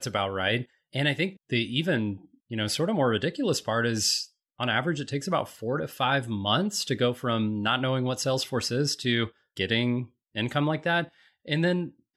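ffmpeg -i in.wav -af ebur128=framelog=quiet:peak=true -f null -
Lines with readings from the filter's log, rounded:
Integrated loudness:
  I:         -27.3 LUFS
  Threshold: -37.4 LUFS
Loudness range:
  LRA:         1.1 LU
  Threshold: -47.3 LUFS
  LRA low:   -27.8 LUFS
  LRA high:  -26.7 LUFS
True peak:
  Peak:      -10.3 dBFS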